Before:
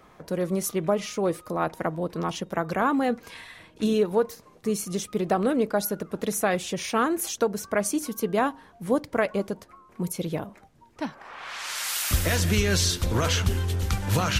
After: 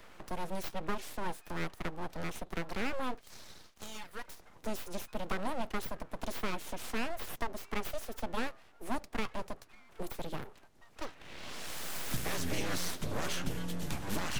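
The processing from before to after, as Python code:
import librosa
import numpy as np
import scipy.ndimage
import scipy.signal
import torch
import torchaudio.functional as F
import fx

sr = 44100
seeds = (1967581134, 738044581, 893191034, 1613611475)

y = fx.highpass(x, sr, hz=1200.0, slope=12, at=(3.21, 4.28))
y = np.abs(y)
y = fx.band_squash(y, sr, depth_pct=40)
y = y * 10.0 ** (-8.5 / 20.0)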